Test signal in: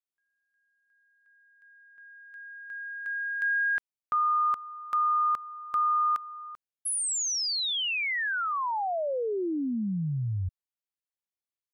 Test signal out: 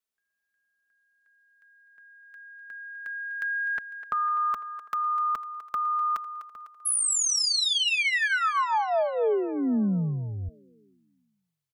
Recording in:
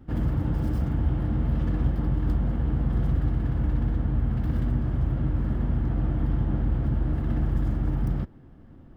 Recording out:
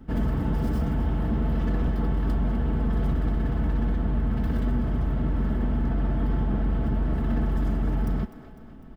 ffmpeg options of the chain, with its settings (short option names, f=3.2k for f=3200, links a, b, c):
-filter_complex "[0:a]aecho=1:1:4.6:0.53,acrossover=split=290[a][b];[a]asoftclip=type=tanh:threshold=-23dB[c];[b]aecho=1:1:251|502|753|1004|1255|1506:0.224|0.123|0.0677|0.0372|0.0205|0.0113[d];[c][d]amix=inputs=2:normalize=0,volume=3dB"